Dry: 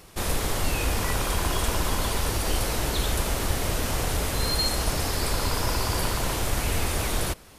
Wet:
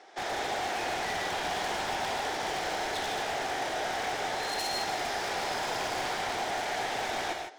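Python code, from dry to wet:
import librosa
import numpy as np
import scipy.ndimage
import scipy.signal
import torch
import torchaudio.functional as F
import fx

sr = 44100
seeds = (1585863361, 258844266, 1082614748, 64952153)

y = fx.cabinet(x, sr, low_hz=370.0, low_slope=24, high_hz=5200.0, hz=(510.0, 770.0, 1100.0, 1700.0, 2700.0, 4400.0), db=(-6, 10, -10, 4, -9, -8))
y = 10.0 ** (-29.0 / 20.0) * (np.abs((y / 10.0 ** (-29.0 / 20.0) + 3.0) % 4.0 - 2.0) - 1.0)
y = fx.rev_gated(y, sr, seeds[0], gate_ms=180, shape='rising', drr_db=3.0)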